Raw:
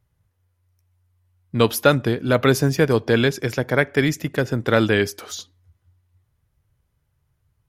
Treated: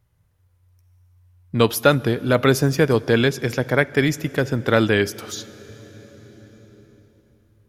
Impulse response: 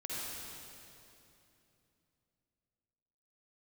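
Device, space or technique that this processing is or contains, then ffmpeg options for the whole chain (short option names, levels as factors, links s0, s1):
ducked reverb: -filter_complex "[0:a]asplit=3[s0][s1][s2];[1:a]atrim=start_sample=2205[s3];[s1][s3]afir=irnorm=-1:irlink=0[s4];[s2]apad=whole_len=339091[s5];[s4][s5]sidechaincompress=threshold=0.02:ratio=8:attack=36:release=1270,volume=0.75[s6];[s0][s6]amix=inputs=2:normalize=0"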